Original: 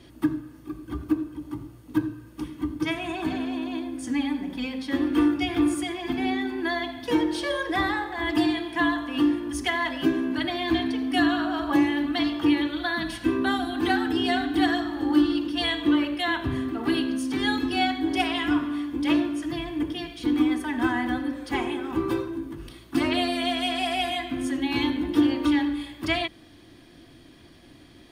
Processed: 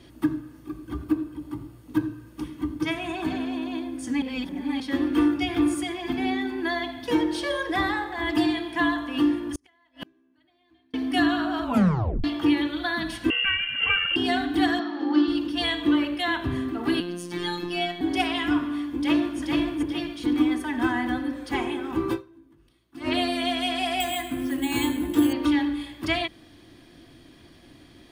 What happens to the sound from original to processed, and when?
0:01.03–0:01.81: notch filter 6,100 Hz, Q 9.3
0:04.22–0:04.80: reverse
0:09.38–0:10.94: gate with flip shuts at −20 dBFS, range −38 dB
0:11.63: tape stop 0.61 s
0:13.30–0:14.16: voice inversion scrambler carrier 3,100 Hz
0:14.79–0:15.28: elliptic band-pass filter 210–5,300 Hz
0:17.00–0:18.01: phases set to zero 175 Hz
0:18.79–0:19.39: delay throw 430 ms, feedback 40%, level −3 dB
0:22.14–0:23.08: duck −20 dB, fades 0.35 s exponential
0:24.00–0:25.33: bad sample-rate conversion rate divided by 4×, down filtered, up hold

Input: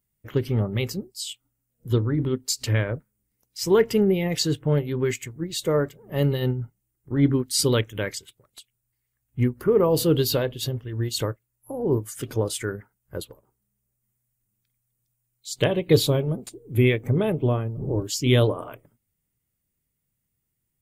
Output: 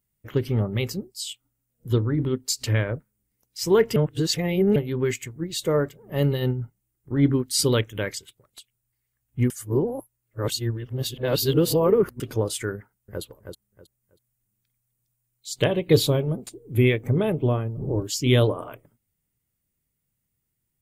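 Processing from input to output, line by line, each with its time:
0:03.96–0:04.76: reverse
0:09.50–0:12.20: reverse
0:12.76–0:13.22: delay throw 320 ms, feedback 25%, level −6.5 dB

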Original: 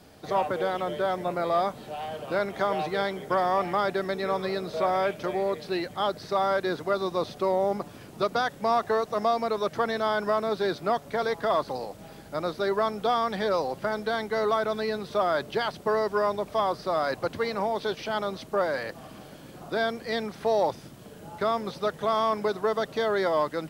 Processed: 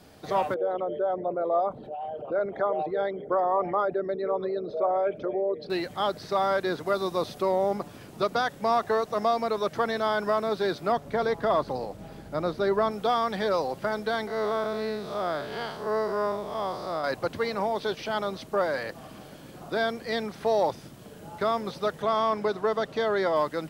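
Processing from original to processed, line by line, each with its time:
0:00.54–0:05.70: spectral envelope exaggerated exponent 2
0:06.86–0:07.42: parametric band 12,000 Hz +6 dB 1.2 octaves
0:10.92–0:12.91: spectral tilt −1.5 dB per octave
0:14.27–0:17.04: spectrum smeared in time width 151 ms
0:22.02–0:23.36: high-shelf EQ 8,700 Hz −10 dB

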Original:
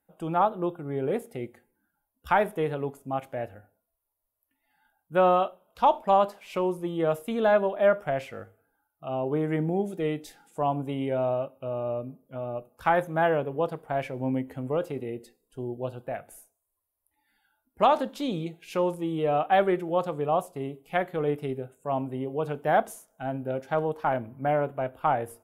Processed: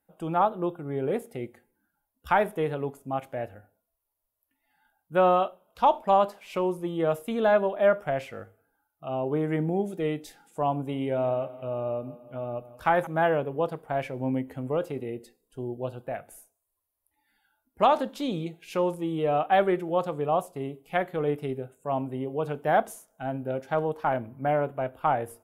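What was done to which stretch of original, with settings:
0:10.76–0:13.07: repeating echo 171 ms, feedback 55%, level −17 dB

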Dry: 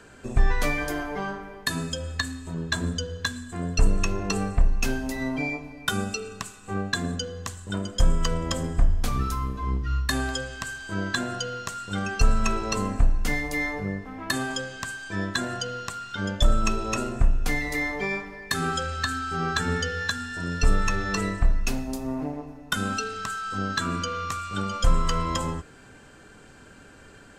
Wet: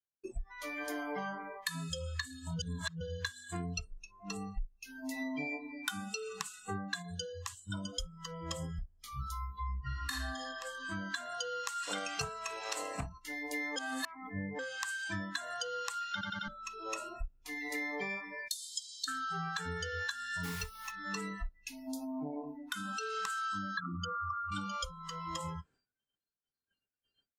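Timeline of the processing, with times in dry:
0:02.59–0:03.01: reverse
0:03.91–0:04.77: low-shelf EQ 77 Hz +10 dB
0:07.02–0:07.85: tuned comb filter 110 Hz, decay 0.3 s, harmonics odd, mix 50%
0:09.78–0:10.40: thrown reverb, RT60 1.8 s, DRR −7 dB
0:11.82–0:13.18: ceiling on every frequency bin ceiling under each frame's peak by 18 dB
0:13.76–0:14.59: reverse
0:16.12: stutter in place 0.09 s, 4 plays
0:18.48–0:19.08: inverse Chebyshev high-pass filter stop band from 1,200 Hz, stop band 60 dB
0:20.43–0:20.90: background noise pink −33 dBFS
0:22.04–0:23.17: downward compressor 4 to 1, threshold −32 dBFS
0:23.77–0:24.52: spectral envelope exaggerated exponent 3
whole clip: downward compressor 16 to 1, threshold −33 dBFS; noise reduction from a noise print of the clip's start 28 dB; downward expander −59 dBFS

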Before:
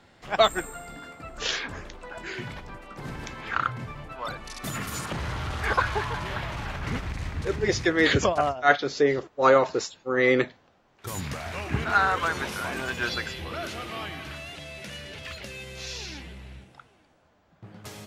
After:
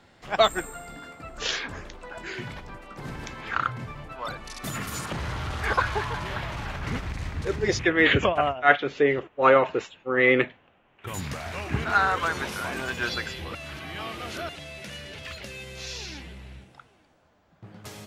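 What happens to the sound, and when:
0:07.79–0:11.14: high shelf with overshoot 3,700 Hz −9.5 dB, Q 3
0:13.55–0:14.49: reverse

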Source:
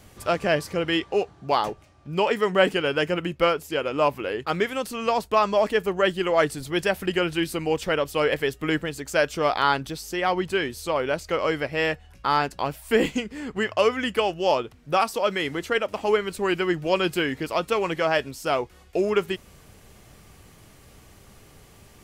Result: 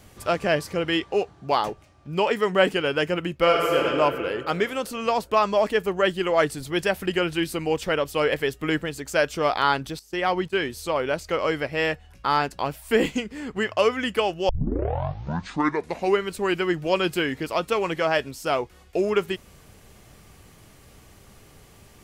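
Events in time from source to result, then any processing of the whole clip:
0:03.43–0:03.85: thrown reverb, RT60 2.5 s, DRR −2.5 dB
0:09.99–0:10.67: noise gate −36 dBFS, range −15 dB
0:14.49: tape start 1.76 s

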